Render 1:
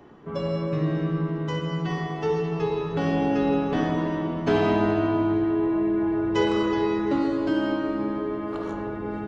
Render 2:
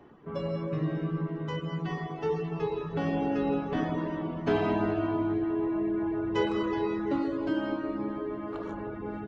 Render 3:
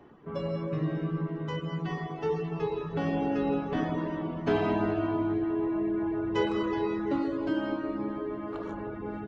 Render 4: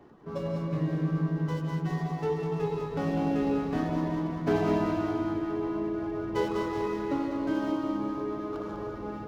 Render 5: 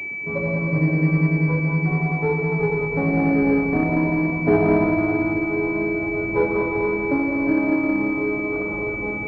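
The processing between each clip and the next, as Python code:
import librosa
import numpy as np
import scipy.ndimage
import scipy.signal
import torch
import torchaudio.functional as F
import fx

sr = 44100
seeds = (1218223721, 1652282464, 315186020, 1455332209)

y1 = fx.dereverb_blind(x, sr, rt60_s=0.55)
y1 = fx.bass_treble(y1, sr, bass_db=0, treble_db=-6)
y1 = y1 * librosa.db_to_amplitude(-4.0)
y2 = y1
y3 = scipy.signal.medfilt(y2, 15)
y3 = fx.echo_feedback(y3, sr, ms=199, feedback_pct=53, wet_db=-6)
y4 = fx.doubler(y3, sr, ms=26.0, db=-12)
y4 = fx.pwm(y4, sr, carrier_hz=2300.0)
y4 = y4 * librosa.db_to_amplitude(8.5)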